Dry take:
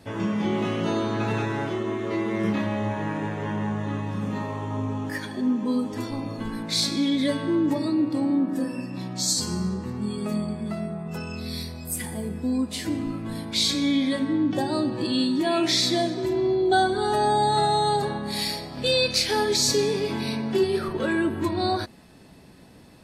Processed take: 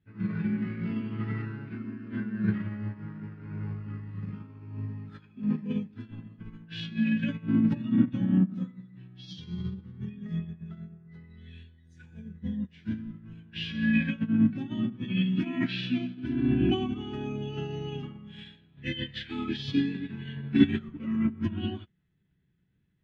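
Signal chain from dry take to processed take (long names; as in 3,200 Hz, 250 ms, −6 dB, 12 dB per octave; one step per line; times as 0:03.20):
flat-topped bell 850 Hz −14.5 dB
formants moved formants −5 semitones
high-frequency loss of the air 360 metres
expander for the loud parts 2.5 to 1, over −38 dBFS
level +6.5 dB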